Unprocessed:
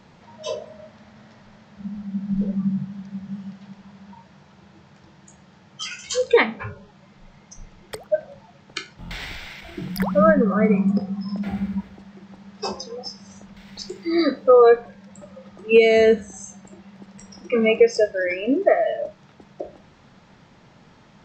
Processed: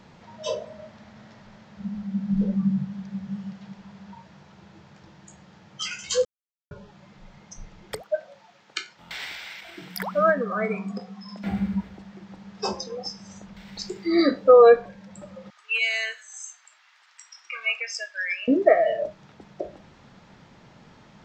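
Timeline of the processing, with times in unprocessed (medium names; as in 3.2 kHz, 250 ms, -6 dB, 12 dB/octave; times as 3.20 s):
6.25–6.71 s: mute
8.02–11.44 s: high-pass 880 Hz 6 dB/octave
15.50–18.48 s: high-pass 1.2 kHz 24 dB/octave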